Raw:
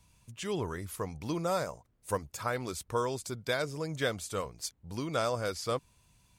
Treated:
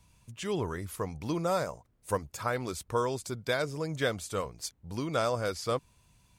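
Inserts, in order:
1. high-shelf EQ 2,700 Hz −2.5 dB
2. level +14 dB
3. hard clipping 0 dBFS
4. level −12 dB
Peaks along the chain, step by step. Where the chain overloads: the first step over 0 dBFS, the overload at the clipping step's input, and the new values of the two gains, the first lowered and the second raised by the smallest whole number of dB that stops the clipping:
−17.5, −3.5, −3.5, −15.5 dBFS
no step passes full scale

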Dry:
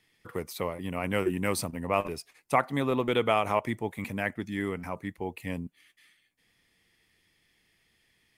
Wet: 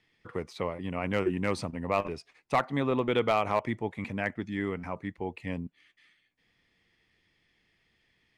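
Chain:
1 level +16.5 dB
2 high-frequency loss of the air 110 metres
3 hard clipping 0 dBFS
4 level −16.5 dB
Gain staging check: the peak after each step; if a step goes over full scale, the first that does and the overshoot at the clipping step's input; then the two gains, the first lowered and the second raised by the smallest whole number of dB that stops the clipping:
+6.5, +6.0, 0.0, −16.5 dBFS
step 1, 6.0 dB
step 1 +10.5 dB, step 4 −10.5 dB

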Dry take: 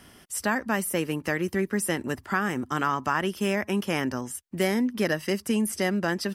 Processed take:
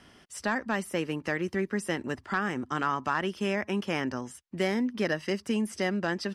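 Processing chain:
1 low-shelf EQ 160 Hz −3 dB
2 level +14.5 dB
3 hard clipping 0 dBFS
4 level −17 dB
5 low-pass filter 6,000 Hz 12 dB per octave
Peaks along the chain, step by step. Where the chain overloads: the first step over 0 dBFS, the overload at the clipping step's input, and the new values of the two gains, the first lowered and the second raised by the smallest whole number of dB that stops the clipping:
−11.0, +3.5, 0.0, −17.0, −16.5 dBFS
step 2, 3.5 dB
step 2 +10.5 dB, step 4 −13 dB

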